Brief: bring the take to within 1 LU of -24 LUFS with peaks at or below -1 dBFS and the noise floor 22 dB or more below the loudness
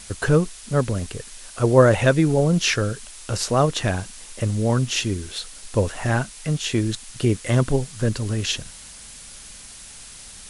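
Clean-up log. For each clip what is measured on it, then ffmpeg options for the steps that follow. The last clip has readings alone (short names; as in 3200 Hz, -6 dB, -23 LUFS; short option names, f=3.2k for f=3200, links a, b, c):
noise floor -42 dBFS; noise floor target -44 dBFS; loudness -22.0 LUFS; peak -2.5 dBFS; loudness target -24.0 LUFS
-> -af "afftdn=nr=6:nf=-42"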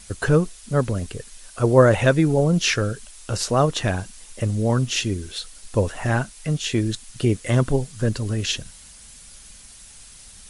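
noise floor -45 dBFS; loudness -22.0 LUFS; peak -2.5 dBFS; loudness target -24.0 LUFS
-> -af "volume=-2dB"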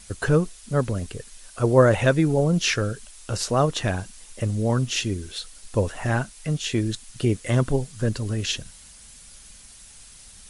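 loudness -24.0 LUFS; peak -4.5 dBFS; noise floor -47 dBFS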